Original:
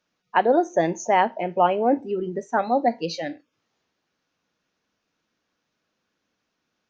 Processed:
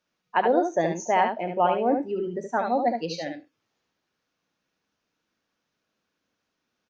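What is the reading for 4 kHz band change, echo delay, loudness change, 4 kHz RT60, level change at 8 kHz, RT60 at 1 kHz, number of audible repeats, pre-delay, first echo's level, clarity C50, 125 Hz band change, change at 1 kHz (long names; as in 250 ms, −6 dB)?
−2.5 dB, 72 ms, −2.5 dB, no reverb audible, can't be measured, no reverb audible, 1, no reverb audible, −5.5 dB, no reverb audible, −2.0 dB, −2.5 dB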